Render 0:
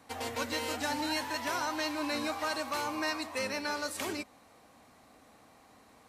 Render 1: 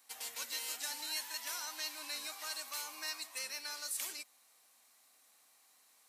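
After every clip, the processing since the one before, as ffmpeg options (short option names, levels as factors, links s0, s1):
-af "aderivative,volume=1.26"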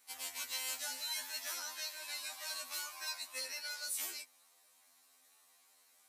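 -af "afftfilt=real='re*2*eq(mod(b,4),0)':imag='im*2*eq(mod(b,4),0)':win_size=2048:overlap=0.75,volume=1.26"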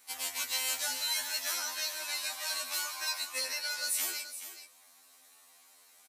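-af "aecho=1:1:148|426:0.141|0.266,volume=2.24"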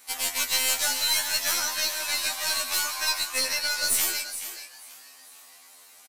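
-filter_complex "[0:a]asplit=5[s0][s1][s2][s3][s4];[s1]adelay=455,afreqshift=130,volume=0.112[s5];[s2]adelay=910,afreqshift=260,volume=0.0596[s6];[s3]adelay=1365,afreqshift=390,volume=0.0316[s7];[s4]adelay=1820,afreqshift=520,volume=0.0168[s8];[s0][s5][s6][s7][s8]amix=inputs=5:normalize=0,aeval=exprs='0.126*(cos(1*acos(clip(val(0)/0.126,-1,1)))-cos(1*PI/2))+0.0158*(cos(2*acos(clip(val(0)/0.126,-1,1)))-cos(2*PI/2))+0.00562*(cos(6*acos(clip(val(0)/0.126,-1,1)))-cos(6*PI/2))':c=same,volume=2.51"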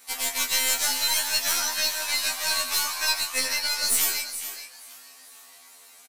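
-filter_complex "[0:a]asplit=2[s0][s1];[s1]adelay=16,volume=0.531[s2];[s0][s2]amix=inputs=2:normalize=0"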